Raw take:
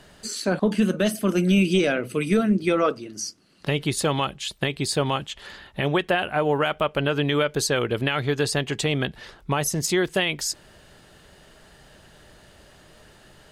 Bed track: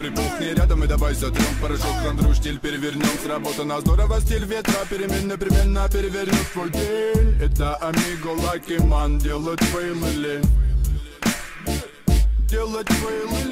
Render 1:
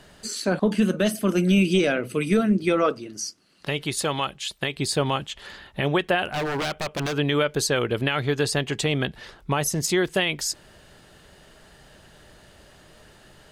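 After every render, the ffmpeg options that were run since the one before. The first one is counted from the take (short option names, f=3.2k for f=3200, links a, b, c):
-filter_complex "[0:a]asettb=1/sr,asplit=3[a][b][c];[a]atrim=end=3.174[d];[b]atrim=start=3.17:end=4.77,asetpts=PTS-STARTPTS,afade=t=in:d=0.004:c=qsin,afade=t=out:st=1.596:d=0.004:c=qsin,lowshelf=f=480:g=-6[e];[c]atrim=start=4.766[f];[d][e]acrossfade=d=0.004:c1=hsin:c2=qsin[g];[g][f]acrossfade=d=0.004:c1=qsin:c2=hsin,asettb=1/sr,asplit=3[h][i][j];[h]atrim=end=6.254[k];[i]atrim=start=6.25:end=7.18,asetpts=PTS-STARTPTS,afade=t=in:d=0.004:c=qsin,afade=t=out:st=0.926:d=0.004:c=qsin,aeval=exprs='0.0891*(abs(mod(val(0)/0.0891+3,4)-2)-1)':c=same[l];[j]atrim=start=7.176[m];[k][l]acrossfade=d=0.004:c1=hsin:c2=qsin[n];[n][m]acrossfade=d=0.004:c1=qsin:c2=hsin"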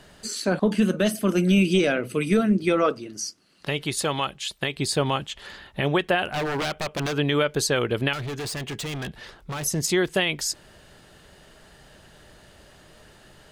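-filter_complex "[0:a]asettb=1/sr,asplit=3[a][b][c];[a]atrim=end=8.134[d];[b]atrim=start=8.13:end=9.65,asetpts=PTS-STARTPTS,afade=t=in:d=0.004:c=qsin,afade=t=out:st=1.516:d=0.004:c=qsin,asoftclip=type=hard:threshold=-29dB[e];[c]atrim=start=9.646[f];[d][e]acrossfade=d=0.004:c1=hsin:c2=qsin[g];[g][f]acrossfade=d=0.004:c1=qsin:c2=hsin"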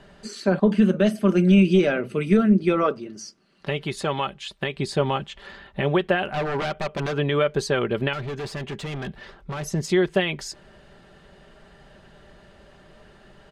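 -af "aemphasis=mode=reproduction:type=75fm,aecho=1:1:5.1:0.4"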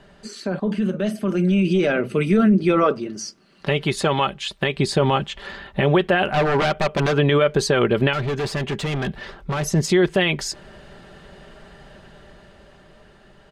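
-af "alimiter=limit=-15.5dB:level=0:latency=1:release=25,dynaudnorm=f=520:g=7:m=7dB"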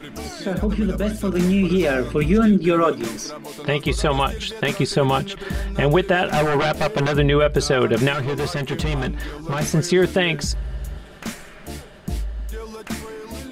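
-filter_complex "[1:a]volume=-9.5dB[a];[0:a][a]amix=inputs=2:normalize=0"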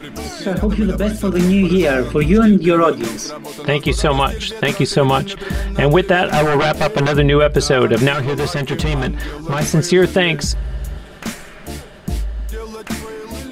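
-af "volume=4.5dB,alimiter=limit=-3dB:level=0:latency=1"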